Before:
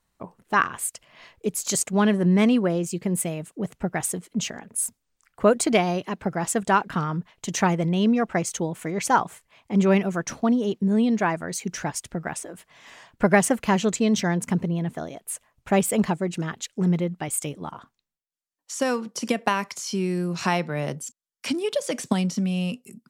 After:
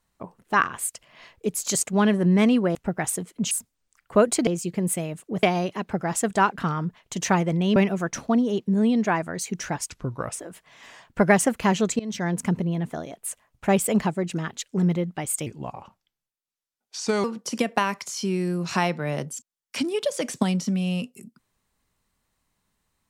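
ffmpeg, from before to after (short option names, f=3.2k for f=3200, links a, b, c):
-filter_complex "[0:a]asplit=11[a][b][c][d][e][f][g][h][i][j][k];[a]atrim=end=2.752[l];[b]atrim=start=3.708:end=4.472[m];[c]atrim=start=4.788:end=5.752[n];[d]atrim=start=2.748:end=3.712[o];[e]atrim=start=5.748:end=8.082[p];[f]atrim=start=9.898:end=12.044[q];[g]atrim=start=12.04:end=12.35,asetpts=PTS-STARTPTS,asetrate=33075,aresample=44100[r];[h]atrim=start=12.346:end=14.03,asetpts=PTS-STARTPTS,afade=t=out:st=1.68:d=0.004:c=hsin:silence=0.0841395[s];[i]atrim=start=14.03:end=17.504,asetpts=PTS-STARTPTS,afade=t=in:d=0.37:silence=0.0841395[t];[j]atrim=start=17.5:end=18.94,asetpts=PTS-STARTPTS,asetrate=35721,aresample=44100[u];[k]atrim=start=18.936[v];[l][m]acrossfade=d=0.004:c1=hsin:c2=hsin[w];[w][n]acrossfade=d=0.004:c1=hsin:c2=hsin[x];[x][o]acrossfade=d=0.004:c1=hsin:c2=hsin[y];[y][p]acrossfade=d=0.004:c1=hsin:c2=hsin[z];[z][q]acrossfade=d=0.004:c1=hsin:c2=hsin[aa];[aa][r]acrossfade=d=0.004:c1=hsin:c2=hsin[ab];[s][t]concat=n=2:v=0:a=1[ac];[ab][ac]acrossfade=d=0.004:c1=hsin:c2=hsin[ad];[ad][u]acrossfade=d=0.004:c1=hsin:c2=hsin[ae];[ae][v]acrossfade=d=0.004:c1=hsin:c2=hsin"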